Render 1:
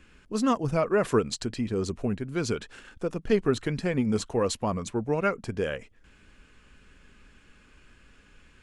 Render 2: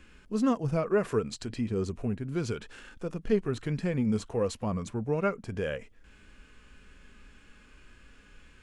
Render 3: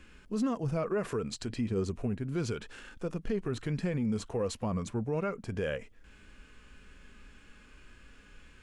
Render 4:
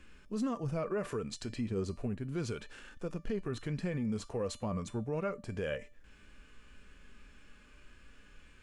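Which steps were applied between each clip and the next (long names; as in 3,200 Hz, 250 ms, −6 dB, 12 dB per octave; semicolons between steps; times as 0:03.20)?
harmonic and percussive parts rebalanced percussive −9 dB; in parallel at −1.5 dB: downward compressor, threshold −36 dBFS, peak gain reduction 16 dB; on the sum: level −2 dB
brickwall limiter −23.5 dBFS, peak gain reduction 8.5 dB
tuned comb filter 590 Hz, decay 0.32 s, mix 70%; level +6.5 dB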